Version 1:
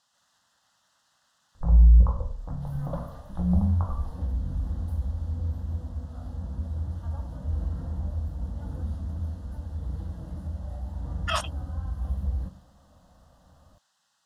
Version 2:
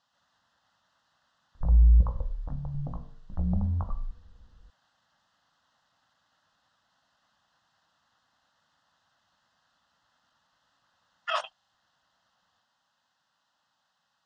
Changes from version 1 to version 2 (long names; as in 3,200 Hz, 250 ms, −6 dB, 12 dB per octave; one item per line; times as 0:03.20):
first sound: send −9.5 dB
second sound: muted
master: add high-frequency loss of the air 150 metres